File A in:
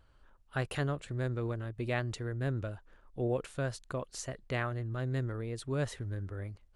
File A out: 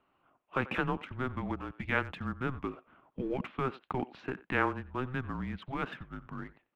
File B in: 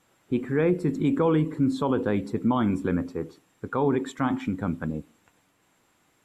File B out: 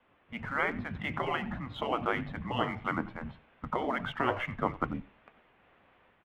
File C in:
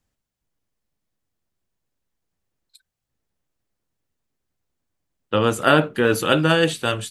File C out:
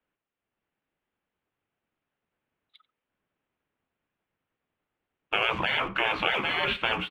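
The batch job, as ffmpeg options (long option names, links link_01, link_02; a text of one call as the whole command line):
ffmpeg -i in.wav -filter_complex "[0:a]afftfilt=real='re*lt(hypot(re,im),0.126)':imag='im*lt(hypot(re,im),0.126)':win_size=1024:overlap=0.75,highpass=frequency=370:width_type=q:width=0.5412,highpass=frequency=370:width_type=q:width=1.307,lowpass=frequency=3300:width_type=q:width=0.5176,lowpass=frequency=3300:width_type=q:width=0.7071,lowpass=frequency=3300:width_type=q:width=1.932,afreqshift=-260,asplit=2[link_01][link_02];[link_02]aeval=exprs='sgn(val(0))*max(abs(val(0))-0.00251,0)':channel_layout=same,volume=-8dB[link_03];[link_01][link_03]amix=inputs=2:normalize=0,dynaudnorm=framelen=320:gausssize=3:maxgain=5dB,asplit=2[link_04][link_05];[link_05]adelay=90,highpass=300,lowpass=3400,asoftclip=type=hard:threshold=-16.5dB,volume=-18dB[link_06];[link_04][link_06]amix=inputs=2:normalize=0" out.wav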